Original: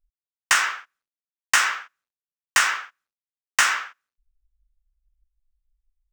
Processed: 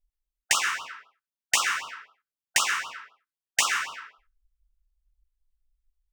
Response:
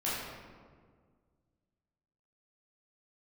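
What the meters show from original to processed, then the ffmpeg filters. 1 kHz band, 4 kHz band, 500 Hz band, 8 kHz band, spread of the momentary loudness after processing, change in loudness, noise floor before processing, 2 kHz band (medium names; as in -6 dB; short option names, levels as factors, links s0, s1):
-5.0 dB, -1.5 dB, -2.0 dB, -1.5 dB, 19 LU, -4.5 dB, under -85 dBFS, -5.5 dB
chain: -filter_complex "[0:a]asplit=2[s0][s1];[1:a]atrim=start_sample=2205,afade=t=out:st=0.29:d=0.01,atrim=end_sample=13230,adelay=108[s2];[s1][s2]afir=irnorm=-1:irlink=0,volume=0.168[s3];[s0][s3]amix=inputs=2:normalize=0,afftfilt=real='re*(1-between(b*sr/1024,550*pow(2000/550,0.5+0.5*sin(2*PI*3.9*pts/sr))/1.41,550*pow(2000/550,0.5+0.5*sin(2*PI*3.9*pts/sr))*1.41))':imag='im*(1-between(b*sr/1024,550*pow(2000/550,0.5+0.5*sin(2*PI*3.9*pts/sr))/1.41,550*pow(2000/550,0.5+0.5*sin(2*PI*3.9*pts/sr))*1.41))':win_size=1024:overlap=0.75,volume=0.794"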